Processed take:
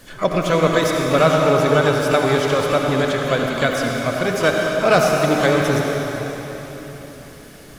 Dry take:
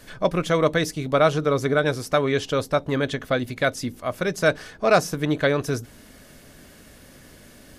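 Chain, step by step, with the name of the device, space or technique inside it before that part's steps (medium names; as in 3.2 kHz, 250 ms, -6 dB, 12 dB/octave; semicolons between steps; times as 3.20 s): shimmer-style reverb (harmony voices +12 st -12 dB; reverberation RT60 4.1 s, pre-delay 61 ms, DRR -0.5 dB); trim +2 dB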